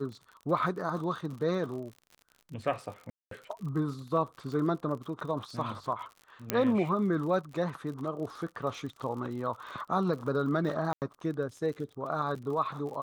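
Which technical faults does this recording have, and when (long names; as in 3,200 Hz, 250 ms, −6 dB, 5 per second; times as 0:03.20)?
surface crackle 54 per second −40 dBFS
0:03.10–0:03.31: drop-out 213 ms
0:06.50: click −11 dBFS
0:10.93–0:11.02: drop-out 88 ms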